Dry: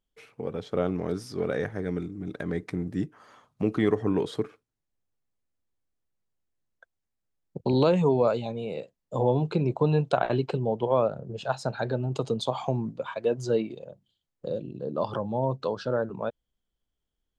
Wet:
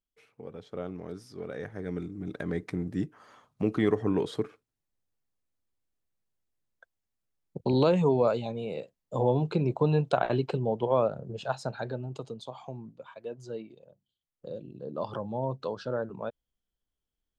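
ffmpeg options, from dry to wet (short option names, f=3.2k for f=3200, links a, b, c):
-af "volume=7dB,afade=t=in:st=1.54:d=0.65:silence=0.375837,afade=t=out:st=11.31:d=1.06:silence=0.266073,afade=t=in:st=13.88:d=1.3:silence=0.375837"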